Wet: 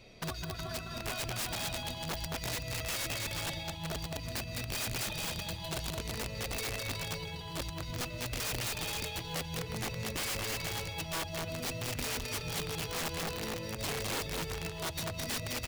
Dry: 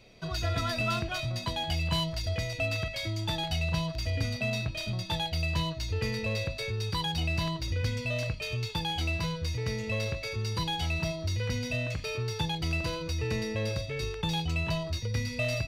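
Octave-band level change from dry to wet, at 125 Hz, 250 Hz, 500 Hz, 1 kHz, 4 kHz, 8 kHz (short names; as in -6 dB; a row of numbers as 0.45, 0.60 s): -9.5, -6.5, -5.5, -4.0, -3.5, +6.0 dB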